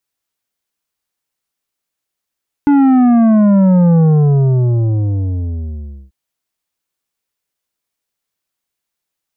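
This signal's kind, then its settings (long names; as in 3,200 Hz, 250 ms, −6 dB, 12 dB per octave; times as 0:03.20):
bass drop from 290 Hz, over 3.44 s, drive 9 dB, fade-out 2.12 s, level −7.5 dB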